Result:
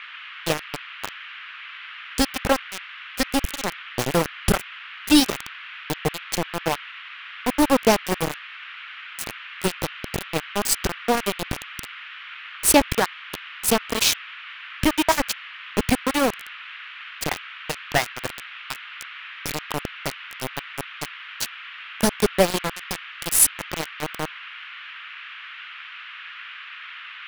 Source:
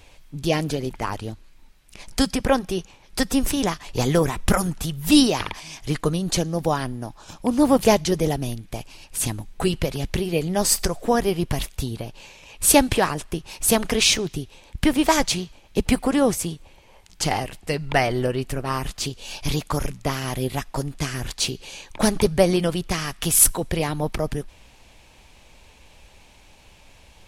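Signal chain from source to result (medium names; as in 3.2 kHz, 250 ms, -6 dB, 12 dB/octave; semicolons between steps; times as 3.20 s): reverb removal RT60 0.65 s; small samples zeroed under -16.5 dBFS; band noise 1.2–3.1 kHz -39 dBFS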